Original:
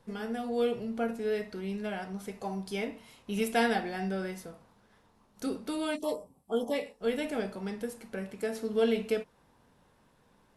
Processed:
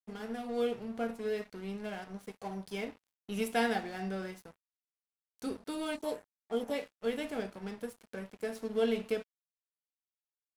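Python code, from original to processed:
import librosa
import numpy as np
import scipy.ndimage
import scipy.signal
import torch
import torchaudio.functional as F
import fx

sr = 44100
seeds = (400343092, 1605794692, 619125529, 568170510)

y = np.sign(x) * np.maximum(np.abs(x) - 10.0 ** (-46.0 / 20.0), 0.0)
y = y * librosa.db_to_amplitude(-2.5)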